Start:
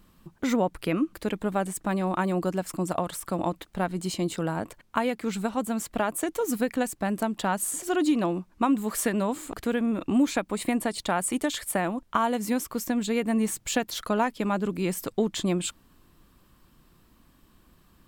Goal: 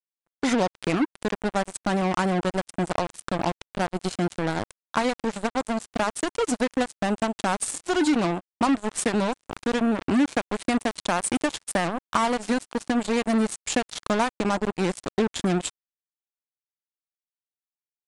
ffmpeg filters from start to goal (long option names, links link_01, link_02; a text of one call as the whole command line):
ffmpeg -i in.wav -filter_complex "[0:a]asplit=2[link_01][link_02];[link_02]acompressor=threshold=-36dB:ratio=5,volume=-0.5dB[link_03];[link_01][link_03]amix=inputs=2:normalize=0,acrusher=bits=3:mix=0:aa=0.5,aresample=22050,aresample=44100" out.wav